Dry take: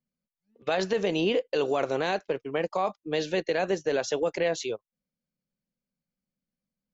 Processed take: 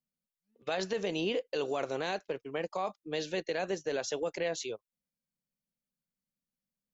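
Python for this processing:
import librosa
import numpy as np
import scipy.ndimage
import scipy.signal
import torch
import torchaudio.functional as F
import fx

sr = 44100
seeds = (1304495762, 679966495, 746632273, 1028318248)

y = fx.high_shelf(x, sr, hz=4300.0, db=6.5)
y = F.gain(torch.from_numpy(y), -7.0).numpy()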